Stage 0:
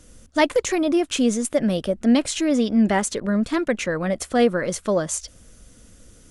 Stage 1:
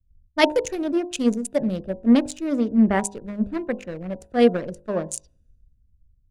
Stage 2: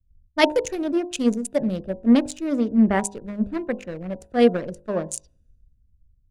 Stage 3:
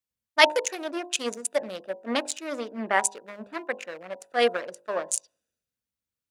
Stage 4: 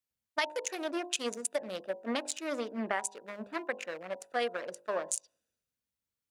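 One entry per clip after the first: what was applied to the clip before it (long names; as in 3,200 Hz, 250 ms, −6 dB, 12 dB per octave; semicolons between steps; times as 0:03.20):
adaptive Wiener filter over 41 samples; hum removal 50.56 Hz, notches 21; multiband upward and downward expander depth 100%; level −1 dB
no processing that can be heard
high-pass filter 800 Hz 12 dB per octave; level +4 dB
downward compressor 8 to 1, threshold −27 dBFS, peak gain reduction 16 dB; level −1.5 dB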